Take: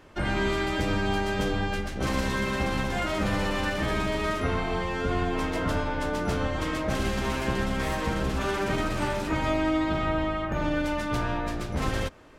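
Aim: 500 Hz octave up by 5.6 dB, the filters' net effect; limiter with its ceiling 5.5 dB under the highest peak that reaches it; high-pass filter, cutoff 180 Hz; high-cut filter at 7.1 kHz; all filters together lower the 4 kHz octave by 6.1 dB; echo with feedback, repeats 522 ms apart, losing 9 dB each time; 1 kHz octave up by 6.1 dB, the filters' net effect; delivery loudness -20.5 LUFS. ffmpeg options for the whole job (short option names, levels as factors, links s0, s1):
-af "highpass=180,lowpass=7100,equalizer=f=500:t=o:g=5.5,equalizer=f=1000:t=o:g=6.5,equalizer=f=4000:t=o:g=-9,alimiter=limit=0.133:level=0:latency=1,aecho=1:1:522|1044|1566|2088:0.355|0.124|0.0435|0.0152,volume=1.88"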